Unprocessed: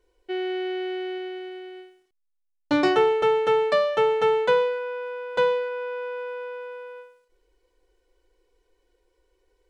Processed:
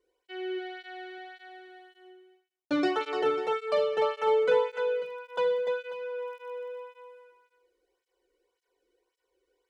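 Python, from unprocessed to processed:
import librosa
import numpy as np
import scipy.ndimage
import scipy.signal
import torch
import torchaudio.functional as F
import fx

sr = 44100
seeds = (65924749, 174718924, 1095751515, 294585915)

y = fx.dmg_crackle(x, sr, seeds[0], per_s=12.0, level_db=-42.0, at=(4.4, 6.52), fade=0.02)
y = fx.echo_multitap(y, sr, ms=(40, 71, 205, 296, 542), db=(-18.0, -13.5, -18.5, -6.0, -14.5))
y = fx.flanger_cancel(y, sr, hz=1.8, depth_ms=1.3)
y = F.gain(torch.from_numpy(y), -4.5).numpy()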